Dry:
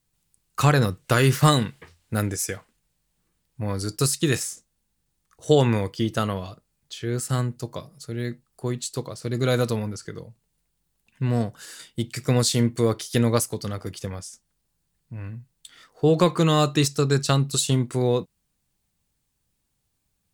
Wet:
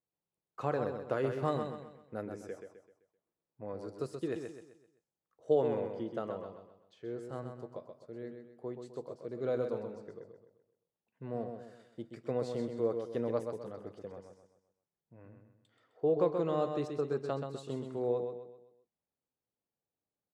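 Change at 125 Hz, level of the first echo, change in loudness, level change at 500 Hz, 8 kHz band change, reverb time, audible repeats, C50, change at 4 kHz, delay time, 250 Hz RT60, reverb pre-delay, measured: -21.0 dB, -6.5 dB, -13.0 dB, -8.0 dB, under -30 dB, no reverb, 4, no reverb, -27.0 dB, 129 ms, no reverb, no reverb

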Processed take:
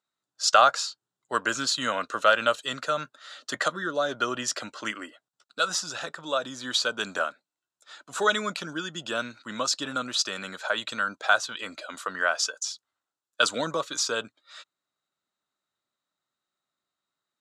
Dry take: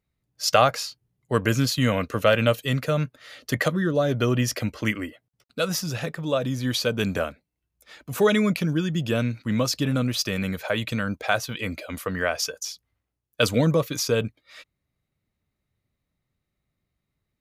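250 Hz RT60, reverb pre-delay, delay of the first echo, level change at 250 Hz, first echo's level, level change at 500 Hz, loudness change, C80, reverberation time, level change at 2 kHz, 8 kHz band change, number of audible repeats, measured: no reverb, no reverb, no echo, -12.5 dB, no echo, -5.5 dB, -2.5 dB, no reverb, no reverb, +1.5 dB, +1.0 dB, no echo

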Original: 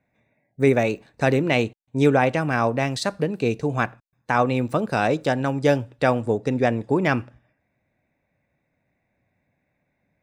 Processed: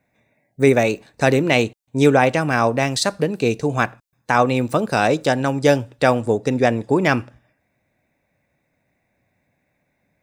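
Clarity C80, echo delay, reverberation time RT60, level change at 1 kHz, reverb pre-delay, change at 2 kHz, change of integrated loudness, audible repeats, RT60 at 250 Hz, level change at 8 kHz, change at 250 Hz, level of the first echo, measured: no reverb, no echo, no reverb, +4.0 dB, no reverb, +4.5 dB, +3.5 dB, no echo, no reverb, +9.5 dB, +3.0 dB, no echo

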